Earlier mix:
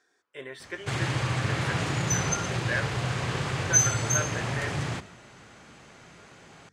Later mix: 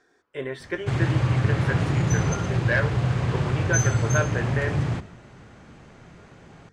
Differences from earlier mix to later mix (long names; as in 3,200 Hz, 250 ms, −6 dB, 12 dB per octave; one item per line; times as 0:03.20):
speech +7.0 dB
master: add spectral tilt −2.5 dB per octave